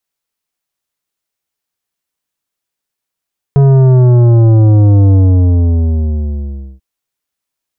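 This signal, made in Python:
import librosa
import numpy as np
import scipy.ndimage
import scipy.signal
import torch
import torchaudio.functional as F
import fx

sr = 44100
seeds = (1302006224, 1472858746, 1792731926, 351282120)

y = fx.sub_drop(sr, level_db=-5.0, start_hz=140.0, length_s=3.24, drive_db=11.0, fade_s=1.68, end_hz=65.0)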